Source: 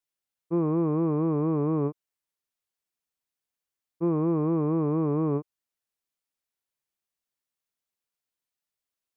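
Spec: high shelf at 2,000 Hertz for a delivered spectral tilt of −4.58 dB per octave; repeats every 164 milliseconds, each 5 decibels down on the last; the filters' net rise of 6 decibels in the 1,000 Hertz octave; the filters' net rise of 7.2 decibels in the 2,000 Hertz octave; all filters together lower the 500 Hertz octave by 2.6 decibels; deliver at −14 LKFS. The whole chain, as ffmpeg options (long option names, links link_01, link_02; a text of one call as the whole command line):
ffmpeg -i in.wav -af "equalizer=frequency=500:width_type=o:gain=-5,equalizer=frequency=1000:width_type=o:gain=5.5,highshelf=frequency=2000:gain=5,equalizer=frequency=2000:width_type=o:gain=5,aecho=1:1:164|328|492|656|820|984|1148:0.562|0.315|0.176|0.0988|0.0553|0.031|0.0173,volume=12dB" out.wav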